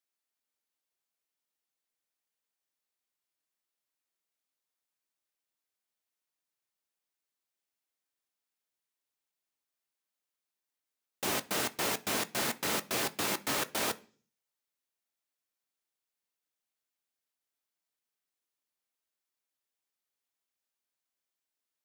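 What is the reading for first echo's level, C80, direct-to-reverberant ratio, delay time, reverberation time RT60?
no echo audible, 26.5 dB, 10.5 dB, no echo audible, 0.45 s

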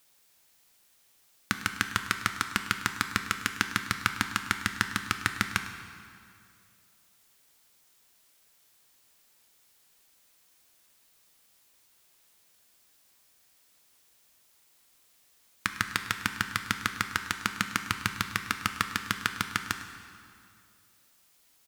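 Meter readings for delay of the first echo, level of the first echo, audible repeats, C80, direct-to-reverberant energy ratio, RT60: 103 ms, −17.0 dB, 1, 9.0 dB, 6.5 dB, 2.3 s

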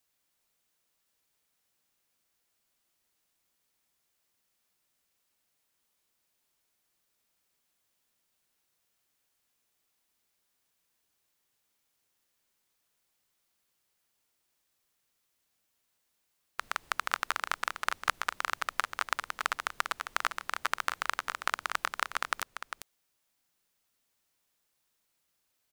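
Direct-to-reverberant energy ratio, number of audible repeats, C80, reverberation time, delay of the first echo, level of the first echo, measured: no reverb audible, 1, no reverb audible, no reverb audible, 400 ms, −8.5 dB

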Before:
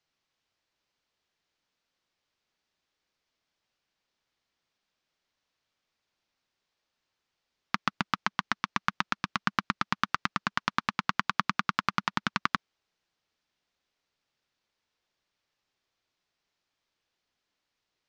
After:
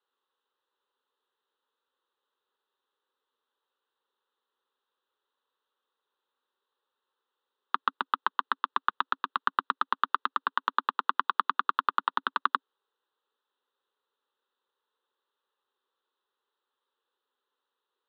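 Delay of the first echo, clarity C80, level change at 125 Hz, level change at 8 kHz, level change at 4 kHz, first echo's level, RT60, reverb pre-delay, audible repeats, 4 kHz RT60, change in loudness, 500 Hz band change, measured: no echo audible, no reverb audible, below −25 dB, below −30 dB, −4.0 dB, no echo audible, no reverb audible, no reverb audible, no echo audible, no reverb audible, +1.0 dB, −1.0 dB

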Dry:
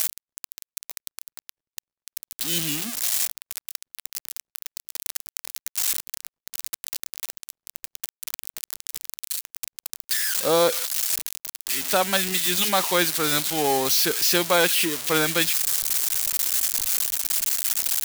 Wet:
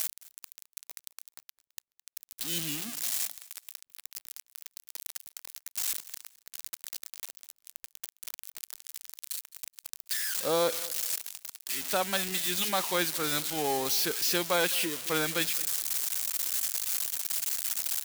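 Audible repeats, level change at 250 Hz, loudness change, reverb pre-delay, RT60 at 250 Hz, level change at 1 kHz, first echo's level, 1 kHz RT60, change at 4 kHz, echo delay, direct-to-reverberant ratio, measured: 2, −7.5 dB, −7.5 dB, no reverb audible, no reverb audible, −7.5 dB, −20.0 dB, no reverb audible, −7.5 dB, 213 ms, no reverb audible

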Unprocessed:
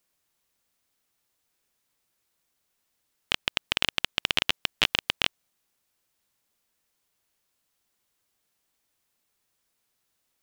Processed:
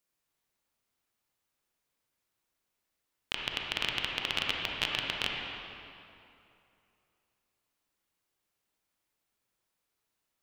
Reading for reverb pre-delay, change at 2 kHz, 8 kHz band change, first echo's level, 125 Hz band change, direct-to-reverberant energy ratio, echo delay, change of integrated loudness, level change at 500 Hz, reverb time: 30 ms, −5.0 dB, −7.5 dB, no echo audible, −3.5 dB, −1.5 dB, no echo audible, −6.0 dB, −4.0 dB, 2.7 s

